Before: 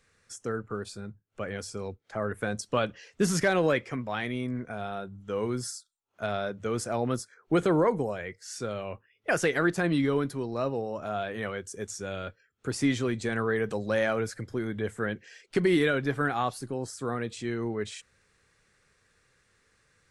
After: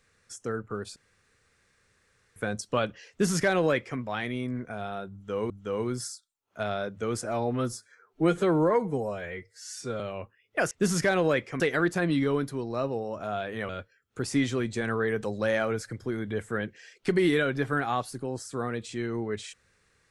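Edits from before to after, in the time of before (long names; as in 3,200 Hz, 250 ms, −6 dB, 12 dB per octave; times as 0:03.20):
0:00.96–0:02.36: fill with room tone
0:03.10–0:03.99: duplicate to 0:09.42
0:05.13–0:05.50: repeat, 2 plays
0:06.87–0:08.71: time-stretch 1.5×
0:11.51–0:12.17: remove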